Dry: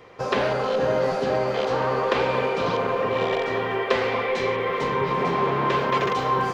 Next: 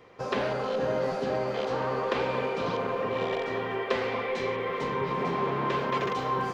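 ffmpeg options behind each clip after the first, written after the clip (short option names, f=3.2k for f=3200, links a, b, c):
-af "equalizer=f=230:t=o:w=1.1:g=3,volume=-6.5dB"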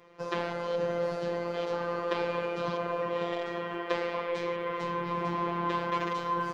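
-af "afftfilt=real='hypot(re,im)*cos(PI*b)':imag='0':win_size=1024:overlap=0.75"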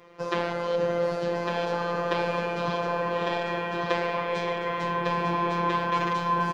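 -af "aecho=1:1:1154:0.668,volume=4.5dB"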